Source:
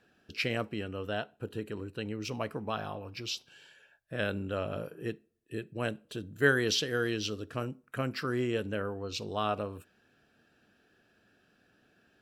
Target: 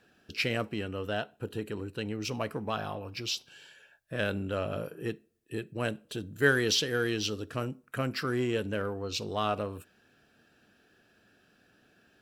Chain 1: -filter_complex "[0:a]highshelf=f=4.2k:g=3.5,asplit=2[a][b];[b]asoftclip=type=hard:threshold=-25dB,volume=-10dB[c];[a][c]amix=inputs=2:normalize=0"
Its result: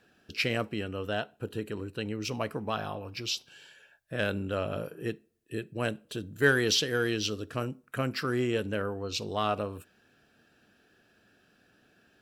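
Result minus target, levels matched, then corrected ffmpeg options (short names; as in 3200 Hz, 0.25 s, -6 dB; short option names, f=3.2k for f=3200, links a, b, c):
hard clip: distortion -7 dB
-filter_complex "[0:a]highshelf=f=4.2k:g=3.5,asplit=2[a][b];[b]asoftclip=type=hard:threshold=-34dB,volume=-10dB[c];[a][c]amix=inputs=2:normalize=0"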